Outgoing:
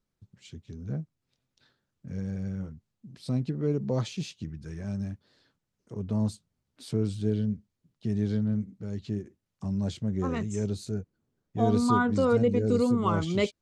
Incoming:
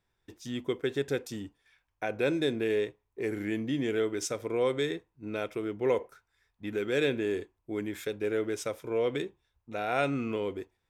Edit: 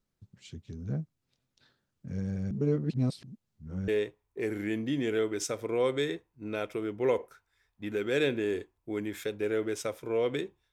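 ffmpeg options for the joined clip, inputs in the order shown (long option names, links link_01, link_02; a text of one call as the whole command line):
ffmpeg -i cue0.wav -i cue1.wav -filter_complex "[0:a]apad=whole_dur=10.72,atrim=end=10.72,asplit=2[link_01][link_02];[link_01]atrim=end=2.512[link_03];[link_02]atrim=start=2.508:end=3.882,asetpts=PTS-STARTPTS,areverse[link_04];[1:a]atrim=start=2.688:end=9.53[link_05];[link_03][link_04]acrossfade=duration=0.004:curve1=hsin:curve2=hsin[link_06];[link_06][link_05]acrossfade=duration=0.004:curve1=hsin:curve2=hsin" out.wav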